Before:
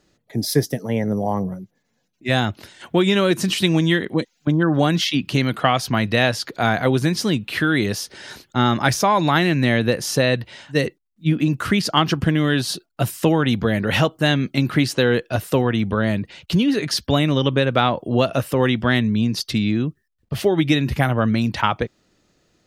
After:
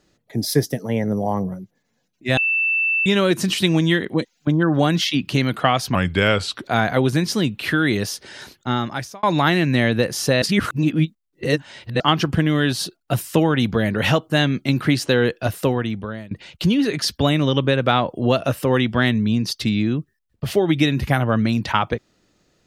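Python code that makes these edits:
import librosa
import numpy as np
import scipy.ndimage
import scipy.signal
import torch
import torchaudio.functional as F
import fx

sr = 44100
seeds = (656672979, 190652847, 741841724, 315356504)

y = fx.edit(x, sr, fx.bleep(start_s=2.37, length_s=0.69, hz=2660.0, db=-16.5),
    fx.speed_span(start_s=5.95, length_s=0.58, speed=0.84),
    fx.fade_out_span(start_s=7.99, length_s=1.13, curve='qsin'),
    fx.reverse_span(start_s=10.31, length_s=1.58),
    fx.fade_out_to(start_s=15.47, length_s=0.73, floor_db=-23.0), tone=tone)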